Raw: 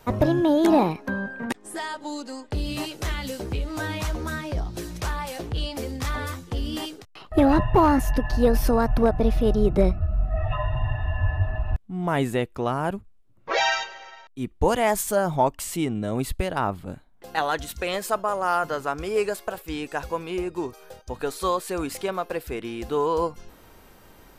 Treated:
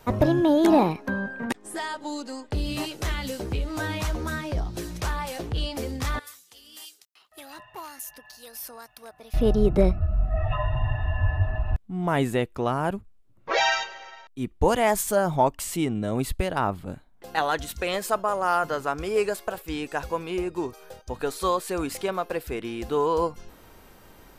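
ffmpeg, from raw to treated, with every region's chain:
ffmpeg -i in.wav -filter_complex "[0:a]asettb=1/sr,asplit=3[link_01][link_02][link_03];[link_01]atrim=end=6.194[link_04];[link_02]atrim=start=6.19:end=9.34,asetpts=PTS-STARTPTS,afade=type=in:duration=0.004:curve=qsin,afade=type=out:start_time=3.146:duration=0.004:curve=qsin,aderivative,acrossover=split=2300[link_05][link_06];[link_05]aeval=exprs='val(0)*(1-0.5/2+0.5/2*cos(2*PI*2*n/s))':channel_layout=same[link_07];[link_06]aeval=exprs='val(0)*(1-0.5/2-0.5/2*cos(2*PI*2*n/s))':channel_layout=same[link_08];[link_07][link_08]amix=inputs=2:normalize=0[link_09];[link_03]atrim=start=9.336[link_10];[link_04][link_09]acrossfade=duration=0.004:curve1=hsin:curve2=qsin[link_11];[link_11][link_10]acrossfade=duration=0.004:curve1=qsin:curve2=hsin" out.wav

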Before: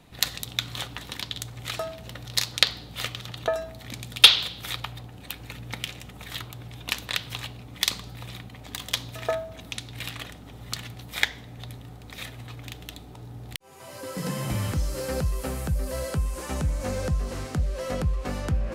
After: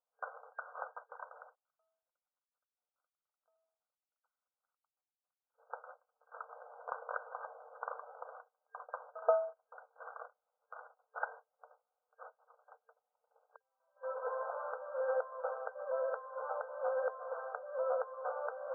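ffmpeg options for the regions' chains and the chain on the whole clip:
ffmpeg -i in.wav -filter_complex "[0:a]asettb=1/sr,asplit=3[link_01][link_02][link_03];[link_01]atrim=end=1.564[link_04];[link_02]atrim=start=1.56:end=5.54,asetpts=PTS-STARTPTS,afade=type=in:duration=0.004:curve=qsin,afade=type=out:start_time=3.976:duration=0.004:curve=qsin,highpass=640,acompressor=threshold=-43dB:ratio=5:attack=3.2:release=140:knee=1:detection=peak,agate=range=-33dB:threshold=-43dB:ratio=3:release=100:detection=peak[link_05];[link_03]atrim=start=5.536[link_06];[link_04][link_05]acrossfade=duration=0.004:curve1=hsin:curve2=qsin[link_07];[link_07][link_06]acrossfade=duration=0.004:curve1=qsin:curve2=hsin,asettb=1/sr,asplit=3[link_08][link_09][link_10];[link_08]atrim=end=6.484[link_11];[link_09]atrim=start=6.48:end=8.38,asetpts=PTS-STARTPTS,afade=type=in:duration=0.004:curve=qsin,afade=type=out:start_time=1.896:duration=0.004:curve=qsin,highpass=62,lowshelf=frequency=500:gain=7.5[link_12];[link_10]atrim=start=8.376[link_13];[link_11][link_12]acrossfade=duration=0.004:curve1=hsin:curve2=qsin[link_14];[link_14][link_13]acrossfade=duration=0.004:curve1=qsin:curve2=hsin,agate=range=-32dB:threshold=-37dB:ratio=16:detection=peak,afftfilt=real='re*between(b*sr/4096,450,1600)':imag='im*between(b*sr/4096,450,1600)':win_size=4096:overlap=0.75,volume=-1.5dB" out.wav

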